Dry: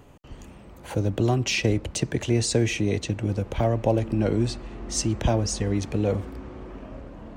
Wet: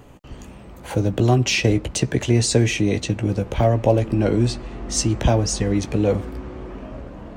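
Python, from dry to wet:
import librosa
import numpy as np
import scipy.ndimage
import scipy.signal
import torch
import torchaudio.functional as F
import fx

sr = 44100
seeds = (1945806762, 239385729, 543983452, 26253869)

y = fx.doubler(x, sr, ms=16.0, db=-10)
y = y * librosa.db_to_amplitude(4.5)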